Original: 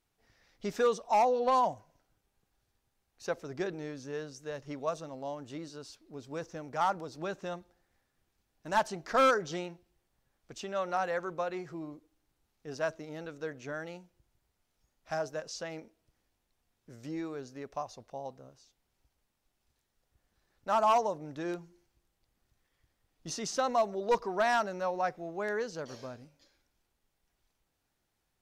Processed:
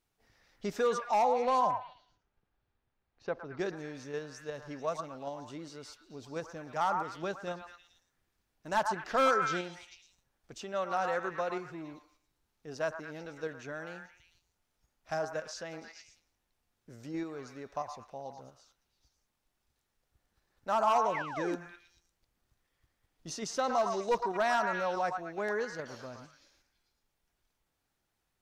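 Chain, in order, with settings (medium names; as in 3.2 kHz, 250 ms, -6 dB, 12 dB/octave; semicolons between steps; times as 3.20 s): 21.14–21.56 s: painted sound fall 250–2300 Hz -39 dBFS; repeats whose band climbs or falls 111 ms, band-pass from 1.1 kHz, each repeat 0.7 oct, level -3 dB; in parallel at -2.5 dB: level held to a coarse grid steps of 18 dB; 1.71–3.59 s: on the sum: distance through air 260 m; trim -3.5 dB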